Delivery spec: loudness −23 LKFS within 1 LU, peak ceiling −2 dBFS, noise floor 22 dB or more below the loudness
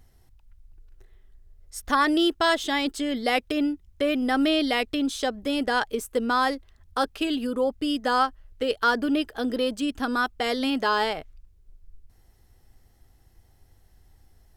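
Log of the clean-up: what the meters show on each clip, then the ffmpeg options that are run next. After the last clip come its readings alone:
integrated loudness −25.0 LKFS; sample peak −9.5 dBFS; target loudness −23.0 LKFS
→ -af "volume=2dB"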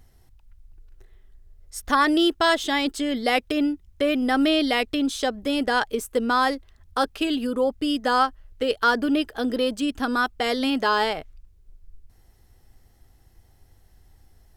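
integrated loudness −23.0 LKFS; sample peak −7.5 dBFS; background noise floor −57 dBFS

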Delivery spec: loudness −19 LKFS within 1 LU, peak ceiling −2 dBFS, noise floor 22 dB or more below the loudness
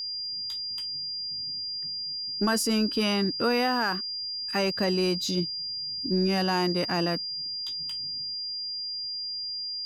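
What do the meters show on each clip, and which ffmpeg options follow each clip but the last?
interfering tone 4,800 Hz; level of the tone −31 dBFS; integrated loudness −27.5 LKFS; sample peak −15.0 dBFS; target loudness −19.0 LKFS
→ -af "bandreject=frequency=4800:width=30"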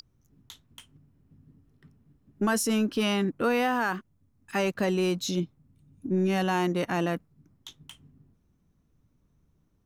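interfering tone none found; integrated loudness −27.5 LKFS; sample peak −16.0 dBFS; target loudness −19.0 LKFS
→ -af "volume=8.5dB"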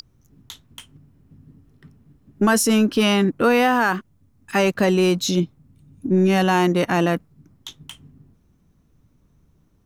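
integrated loudness −19.0 LKFS; sample peak −7.5 dBFS; background noise floor −61 dBFS

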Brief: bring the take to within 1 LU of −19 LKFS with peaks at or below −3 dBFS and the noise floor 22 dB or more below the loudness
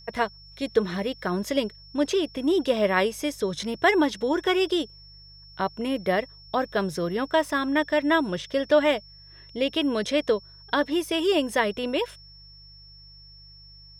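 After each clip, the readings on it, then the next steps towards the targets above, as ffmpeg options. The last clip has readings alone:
mains hum 50 Hz; hum harmonics up to 150 Hz; level of the hum −50 dBFS; interfering tone 5,400 Hz; level of the tone −48 dBFS; integrated loudness −25.5 LKFS; sample peak −8.0 dBFS; target loudness −19.0 LKFS
→ -af "bandreject=frequency=50:width_type=h:width=4,bandreject=frequency=100:width_type=h:width=4,bandreject=frequency=150:width_type=h:width=4"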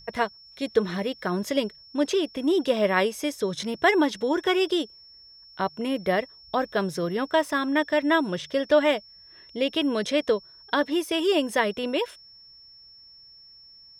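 mains hum none found; interfering tone 5,400 Hz; level of the tone −48 dBFS
→ -af "bandreject=frequency=5400:width=30"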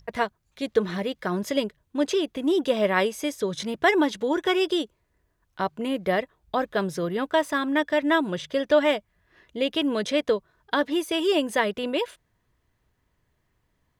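interfering tone none found; integrated loudness −25.5 LKFS; sample peak −8.0 dBFS; target loudness −19.0 LKFS
→ -af "volume=6.5dB,alimiter=limit=-3dB:level=0:latency=1"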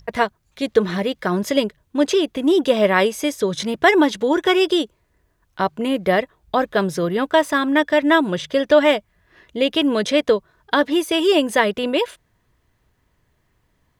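integrated loudness −19.0 LKFS; sample peak −3.0 dBFS; background noise floor −66 dBFS

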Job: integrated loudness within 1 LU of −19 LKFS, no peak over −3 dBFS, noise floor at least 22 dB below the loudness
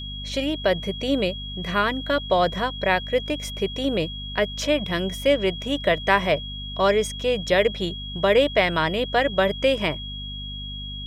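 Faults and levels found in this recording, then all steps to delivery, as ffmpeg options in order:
mains hum 50 Hz; hum harmonics up to 250 Hz; level of the hum −33 dBFS; interfering tone 3,300 Hz; level of the tone −34 dBFS; integrated loudness −23.5 LKFS; sample peak −3.0 dBFS; target loudness −19.0 LKFS
→ -af "bandreject=frequency=50:width_type=h:width=6,bandreject=frequency=100:width_type=h:width=6,bandreject=frequency=150:width_type=h:width=6,bandreject=frequency=200:width_type=h:width=6,bandreject=frequency=250:width_type=h:width=6"
-af "bandreject=frequency=3300:width=30"
-af "volume=4.5dB,alimiter=limit=-3dB:level=0:latency=1"

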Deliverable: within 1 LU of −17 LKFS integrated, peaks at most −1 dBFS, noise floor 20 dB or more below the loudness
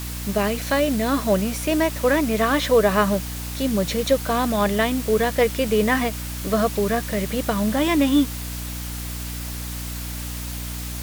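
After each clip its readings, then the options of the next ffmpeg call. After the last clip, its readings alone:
mains hum 60 Hz; hum harmonics up to 300 Hz; level of the hum −29 dBFS; background noise floor −31 dBFS; target noise floor −42 dBFS; integrated loudness −22.0 LKFS; sample peak −6.0 dBFS; target loudness −17.0 LKFS
→ -af "bandreject=frequency=60:width_type=h:width=4,bandreject=frequency=120:width_type=h:width=4,bandreject=frequency=180:width_type=h:width=4,bandreject=frequency=240:width_type=h:width=4,bandreject=frequency=300:width_type=h:width=4"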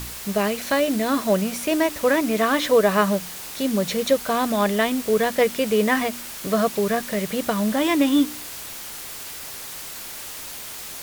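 mains hum none found; background noise floor −36 dBFS; target noise floor −43 dBFS
→ -af "afftdn=noise_reduction=7:noise_floor=-36"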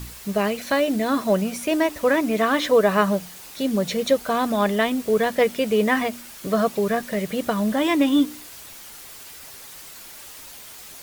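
background noise floor −42 dBFS; integrated loudness −22.0 LKFS; sample peak −6.5 dBFS; target loudness −17.0 LKFS
→ -af "volume=5dB"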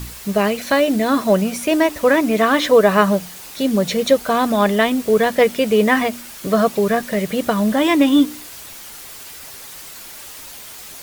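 integrated loudness −17.0 LKFS; sample peak −1.5 dBFS; background noise floor −37 dBFS

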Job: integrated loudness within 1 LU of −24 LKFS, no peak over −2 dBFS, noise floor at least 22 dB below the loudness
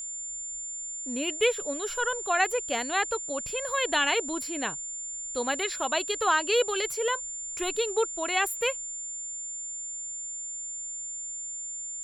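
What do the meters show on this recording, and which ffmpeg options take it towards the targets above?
interfering tone 7,200 Hz; level of the tone −34 dBFS; integrated loudness −28.5 LKFS; sample peak −11.5 dBFS; target loudness −24.0 LKFS
→ -af "bandreject=frequency=7200:width=30"
-af "volume=4.5dB"

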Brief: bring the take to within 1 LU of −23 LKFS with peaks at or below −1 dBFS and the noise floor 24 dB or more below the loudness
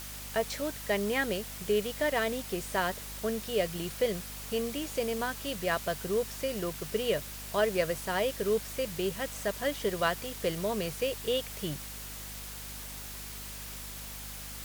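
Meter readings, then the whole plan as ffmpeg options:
mains hum 50 Hz; hum harmonics up to 250 Hz; level of the hum −45 dBFS; background noise floor −42 dBFS; target noise floor −57 dBFS; integrated loudness −32.5 LKFS; sample peak −13.5 dBFS; target loudness −23.0 LKFS
→ -af "bandreject=frequency=50:width_type=h:width=6,bandreject=frequency=100:width_type=h:width=6,bandreject=frequency=150:width_type=h:width=6,bandreject=frequency=200:width_type=h:width=6,bandreject=frequency=250:width_type=h:width=6"
-af "afftdn=noise_reduction=15:noise_floor=-42"
-af "volume=9.5dB"

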